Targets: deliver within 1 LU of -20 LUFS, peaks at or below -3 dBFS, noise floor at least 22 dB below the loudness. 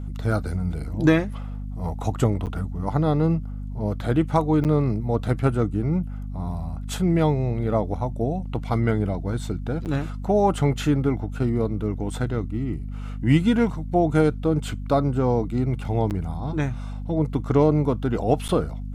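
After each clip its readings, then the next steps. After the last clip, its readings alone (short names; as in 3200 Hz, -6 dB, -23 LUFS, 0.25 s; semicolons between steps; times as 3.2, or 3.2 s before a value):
dropouts 5; longest dropout 8.5 ms; hum 50 Hz; harmonics up to 250 Hz; hum level -29 dBFS; loudness -24.0 LUFS; peak -6.5 dBFS; loudness target -20.0 LUFS
-> interpolate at 2.46/4.64/9.85/16.1/18.48, 8.5 ms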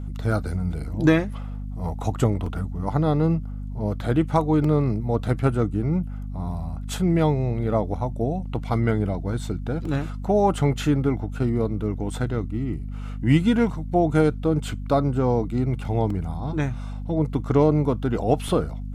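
dropouts 0; hum 50 Hz; harmonics up to 250 Hz; hum level -29 dBFS
-> notches 50/100/150/200/250 Hz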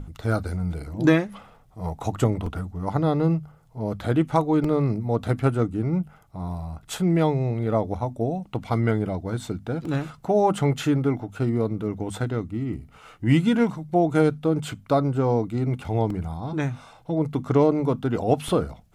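hum none; loudness -24.5 LUFS; peak -6.0 dBFS; loudness target -20.0 LUFS
-> gain +4.5 dB; limiter -3 dBFS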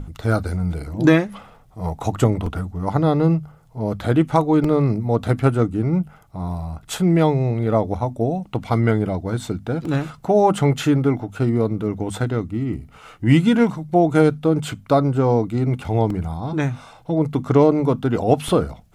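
loudness -20.0 LUFS; peak -3.0 dBFS; noise floor -49 dBFS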